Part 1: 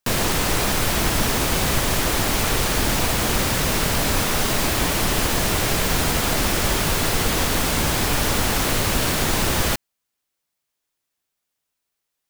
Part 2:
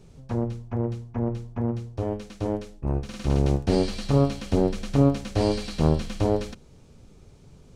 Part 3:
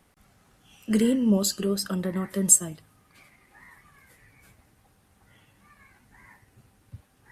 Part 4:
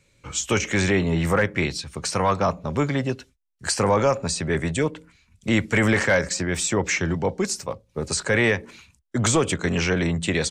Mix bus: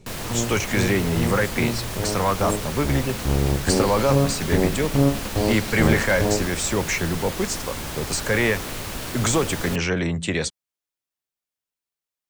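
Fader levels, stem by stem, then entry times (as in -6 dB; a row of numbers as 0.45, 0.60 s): -10.5, +0.5, -17.0, -1.0 dB; 0.00, 0.00, 0.00, 0.00 s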